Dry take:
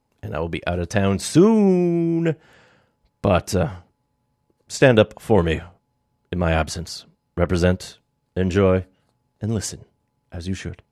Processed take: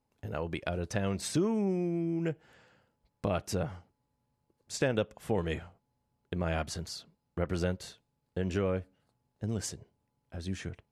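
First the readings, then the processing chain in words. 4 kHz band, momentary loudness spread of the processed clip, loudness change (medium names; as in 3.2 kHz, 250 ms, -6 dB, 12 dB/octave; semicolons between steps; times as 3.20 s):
-11.0 dB, 12 LU, -13.5 dB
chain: compression 2:1, threshold -22 dBFS, peak gain reduction 8 dB; trim -8.5 dB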